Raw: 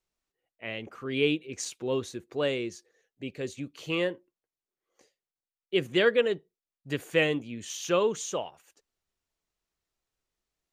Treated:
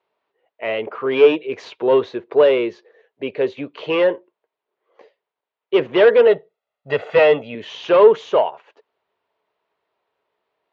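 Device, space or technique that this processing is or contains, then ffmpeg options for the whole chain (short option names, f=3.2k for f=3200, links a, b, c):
overdrive pedal into a guitar cabinet: -filter_complex "[0:a]asettb=1/sr,asplit=3[a][b][c];[a]atrim=end=6.274[d];[b]atrim=start=6.27:end=7.55,asetpts=PTS-STARTPTS,afade=t=in:d=0.004:c=qsin,afade=t=out:st=1.276:d=0.004:c=qsin,aecho=1:1:1.5:0.7,atrim=end_sample=56448[e];[c]atrim=start=7.546[f];[d][e]acrossfade=d=0.004:c1=hsin:c2=qsin[g];[g][f]acrossfade=d=0.004:c1=qsin:c2=hsin,asplit=2[h][i];[i]highpass=f=720:p=1,volume=21dB,asoftclip=type=tanh:threshold=-9.5dB[j];[h][j]amix=inputs=2:normalize=0,lowpass=f=2k:p=1,volume=-6dB,highpass=95,equalizer=f=100:t=q:w=4:g=4,equalizer=f=430:t=q:w=4:g=10,equalizer=f=620:t=q:w=4:g=8,equalizer=f=950:t=q:w=4:g=9,lowpass=f=3.8k:w=0.5412,lowpass=f=3.8k:w=1.3066"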